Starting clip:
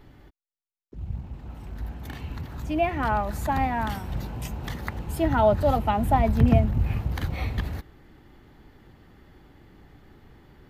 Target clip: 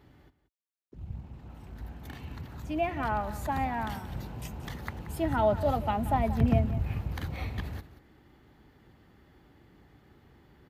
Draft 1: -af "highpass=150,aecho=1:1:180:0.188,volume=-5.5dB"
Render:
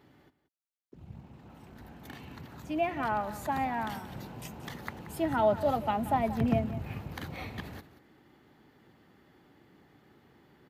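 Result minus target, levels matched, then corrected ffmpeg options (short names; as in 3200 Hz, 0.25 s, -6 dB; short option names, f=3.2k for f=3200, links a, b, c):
125 Hz band -5.5 dB
-af "highpass=53,aecho=1:1:180:0.188,volume=-5.5dB"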